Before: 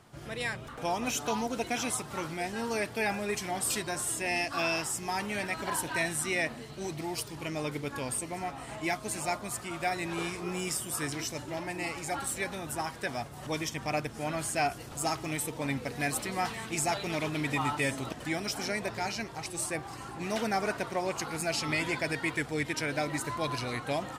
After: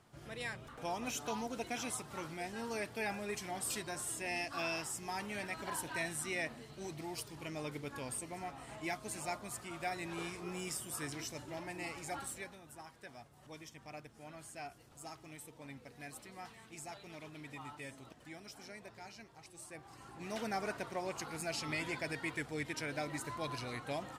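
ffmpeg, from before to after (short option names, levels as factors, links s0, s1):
-af "volume=1.26,afade=t=out:st=12.17:d=0.42:silence=0.316228,afade=t=in:st=19.65:d=0.84:silence=0.316228"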